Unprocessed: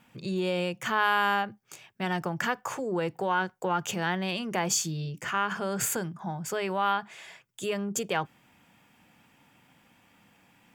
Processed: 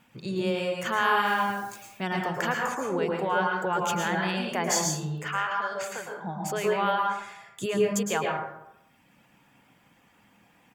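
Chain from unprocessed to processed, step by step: speakerphone echo 210 ms, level -18 dB; 1.25–1.86 s: added noise white -51 dBFS; 7.19–7.66 s: bass shelf 210 Hz +11 dB; reverb removal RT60 1.1 s; 5.28–6.22 s: three-band isolator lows -19 dB, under 540 Hz, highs -20 dB, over 5.1 kHz; reverberation RT60 0.90 s, pre-delay 103 ms, DRR -1 dB

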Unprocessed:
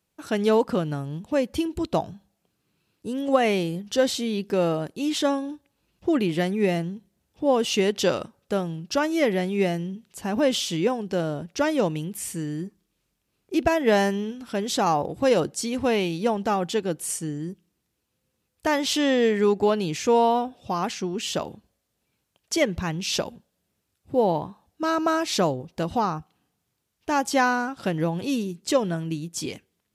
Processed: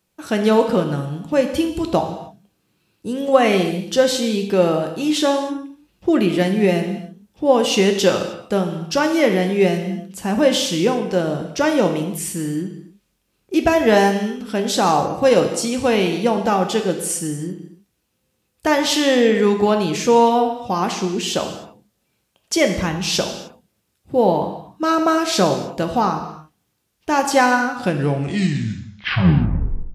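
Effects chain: tape stop on the ending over 2.17 s; gated-style reverb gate 330 ms falling, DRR 4.5 dB; trim +5 dB

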